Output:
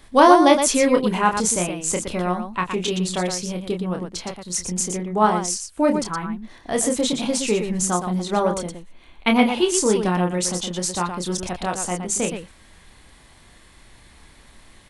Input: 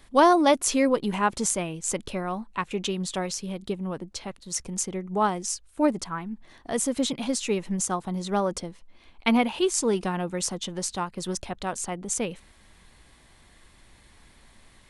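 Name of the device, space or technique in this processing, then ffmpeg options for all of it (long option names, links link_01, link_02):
slapback doubling: -filter_complex "[0:a]asettb=1/sr,asplit=3[link_01][link_02][link_03];[link_01]atrim=end=8.284[link_04];[link_02]atrim=start=8.28:end=9.36,asetpts=PTS-STARTPTS,afade=type=in:duration=0.004:curve=qsin,afade=type=out:start_time=1.076:duration=0.004:curve=qsin,equalizer=frequency=5100:width_type=o:width=0.3:gain=-10[link_05];[link_03]atrim=start=9.356[link_06];[link_04][link_05]acrossfade=duration=0.004:curve1=hsin:curve2=qsin[link_07];[link_07][link_06]acrossfade=duration=0.004:curve1=qsin:curve2=hsin,asplit=3[link_08][link_09][link_10];[link_09]adelay=28,volume=-5dB[link_11];[link_10]adelay=118,volume=-7dB[link_12];[link_08][link_11][link_12]amix=inputs=3:normalize=0,volume=4dB"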